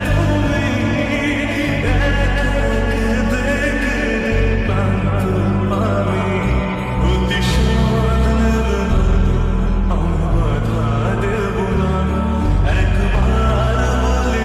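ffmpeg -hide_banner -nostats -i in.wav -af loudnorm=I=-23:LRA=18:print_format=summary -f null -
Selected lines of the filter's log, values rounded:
Input Integrated:    -17.2 LUFS
Input True Peak:      -7.2 dBTP
Input LRA:             1.0 LU
Input Threshold:     -27.2 LUFS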